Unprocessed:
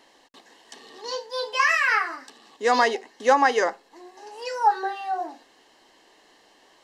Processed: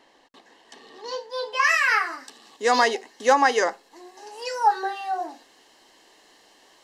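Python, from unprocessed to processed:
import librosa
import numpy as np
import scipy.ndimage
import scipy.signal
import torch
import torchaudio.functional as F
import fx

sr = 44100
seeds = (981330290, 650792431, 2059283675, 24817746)

y = fx.high_shelf(x, sr, hz=4600.0, db=fx.steps((0.0, -7.5), (1.63, 6.5)))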